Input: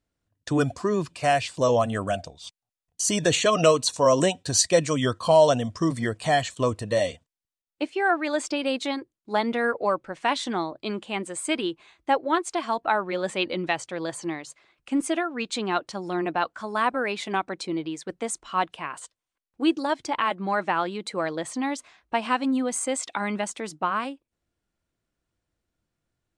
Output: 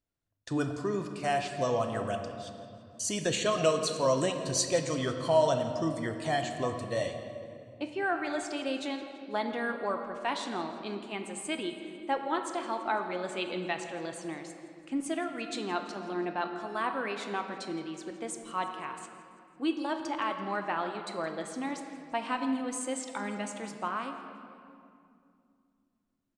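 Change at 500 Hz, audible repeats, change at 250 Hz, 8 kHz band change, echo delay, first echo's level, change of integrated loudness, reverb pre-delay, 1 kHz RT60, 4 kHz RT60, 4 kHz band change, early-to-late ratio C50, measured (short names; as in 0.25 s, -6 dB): -7.0 dB, 2, -6.5 dB, -8.0 dB, 0.167 s, -18.5 dB, -7.0 dB, 3 ms, 2.3 s, 1.6 s, -7.5 dB, 6.5 dB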